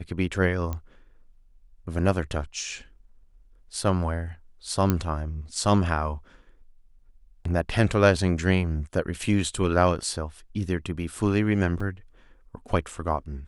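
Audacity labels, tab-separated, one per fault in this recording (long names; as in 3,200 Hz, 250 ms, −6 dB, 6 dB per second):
0.730000	0.730000	click −18 dBFS
4.900000	4.900000	click −9 dBFS
11.800000	11.800000	drop-out 4.5 ms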